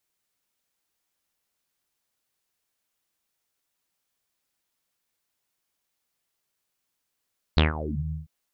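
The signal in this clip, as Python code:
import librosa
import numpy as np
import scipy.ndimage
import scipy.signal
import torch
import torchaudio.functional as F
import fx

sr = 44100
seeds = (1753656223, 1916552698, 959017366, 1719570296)

y = fx.sub_voice(sr, note=39, wave='saw', cutoff_hz=140.0, q=6.8, env_oct=5.0, env_s=0.42, attack_ms=2.8, decay_s=0.15, sustain_db=-16.5, release_s=0.15, note_s=0.55, slope=24)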